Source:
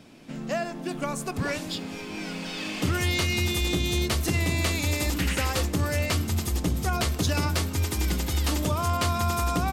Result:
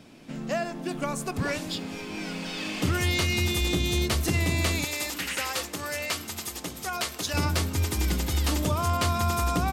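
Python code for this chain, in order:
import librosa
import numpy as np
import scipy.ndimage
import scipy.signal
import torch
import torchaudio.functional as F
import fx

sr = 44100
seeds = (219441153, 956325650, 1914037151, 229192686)

y = fx.highpass(x, sr, hz=800.0, slope=6, at=(4.84, 7.34))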